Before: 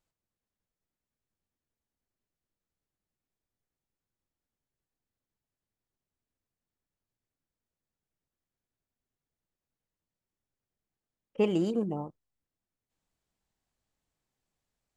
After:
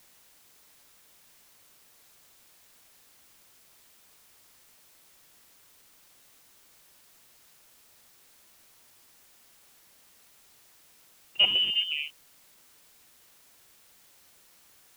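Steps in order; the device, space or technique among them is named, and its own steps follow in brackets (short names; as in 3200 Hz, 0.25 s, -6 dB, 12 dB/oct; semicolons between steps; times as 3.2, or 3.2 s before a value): scrambled radio voice (BPF 350–2800 Hz; inverted band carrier 3300 Hz; white noise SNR 20 dB); gain +6 dB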